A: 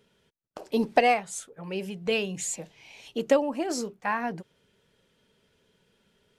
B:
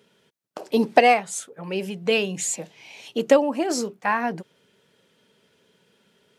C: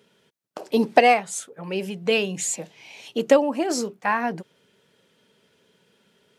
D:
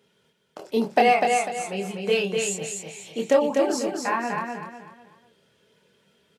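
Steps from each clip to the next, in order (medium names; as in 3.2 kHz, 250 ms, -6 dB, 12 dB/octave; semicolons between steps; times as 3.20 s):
high-pass 150 Hz 12 dB/octave; trim +5.5 dB
no audible change
chorus voices 6, 0.36 Hz, delay 26 ms, depth 1.4 ms; on a send: feedback delay 248 ms, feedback 34%, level -4 dB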